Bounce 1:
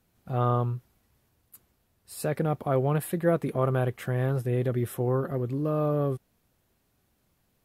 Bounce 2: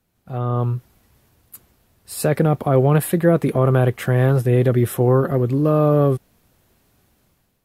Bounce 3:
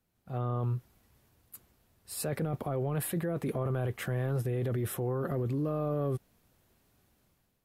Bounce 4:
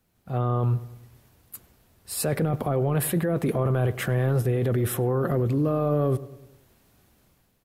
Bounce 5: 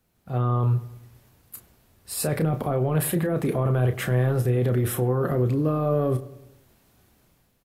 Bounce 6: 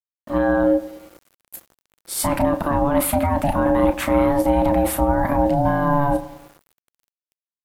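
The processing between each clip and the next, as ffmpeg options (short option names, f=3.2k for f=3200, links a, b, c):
-filter_complex "[0:a]acrossover=split=420[a][b];[b]alimiter=limit=-24dB:level=0:latency=1:release=15[c];[a][c]amix=inputs=2:normalize=0,dynaudnorm=f=250:g=5:m=11dB"
-af "alimiter=limit=-16.5dB:level=0:latency=1:release=10,volume=-8.5dB"
-filter_complex "[0:a]asplit=2[a][b];[b]adelay=101,lowpass=f=1.7k:p=1,volume=-16dB,asplit=2[c][d];[d]adelay=101,lowpass=f=1.7k:p=1,volume=0.53,asplit=2[e][f];[f]adelay=101,lowpass=f=1.7k:p=1,volume=0.53,asplit=2[g][h];[h]adelay=101,lowpass=f=1.7k:p=1,volume=0.53,asplit=2[i][j];[j]adelay=101,lowpass=f=1.7k:p=1,volume=0.53[k];[a][c][e][g][i][k]amix=inputs=6:normalize=0,volume=8dB"
-filter_complex "[0:a]asplit=2[a][b];[b]adelay=32,volume=-8.5dB[c];[a][c]amix=inputs=2:normalize=0"
-af "aeval=exprs='val(0)*sin(2*PI*430*n/s)':c=same,aeval=exprs='val(0)*gte(abs(val(0)),0.00266)':c=same,volume=7.5dB"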